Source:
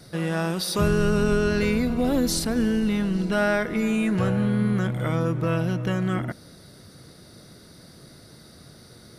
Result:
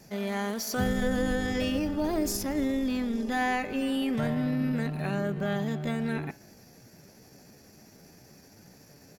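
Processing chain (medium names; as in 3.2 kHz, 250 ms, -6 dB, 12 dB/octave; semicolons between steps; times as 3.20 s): de-hum 138.8 Hz, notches 36; pitch shift +3.5 st; trim -5.5 dB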